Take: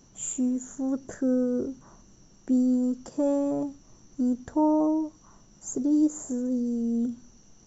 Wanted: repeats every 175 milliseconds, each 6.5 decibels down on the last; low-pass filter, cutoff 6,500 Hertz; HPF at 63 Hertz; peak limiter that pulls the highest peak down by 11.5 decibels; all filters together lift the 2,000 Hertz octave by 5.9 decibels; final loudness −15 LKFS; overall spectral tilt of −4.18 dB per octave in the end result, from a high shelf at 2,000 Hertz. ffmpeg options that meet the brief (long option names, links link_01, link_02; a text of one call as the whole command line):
ffmpeg -i in.wav -af "highpass=63,lowpass=6500,highshelf=frequency=2000:gain=8,equalizer=frequency=2000:width_type=o:gain=3.5,alimiter=limit=-24dB:level=0:latency=1,aecho=1:1:175|350|525|700|875|1050:0.473|0.222|0.105|0.0491|0.0231|0.0109,volume=16dB" out.wav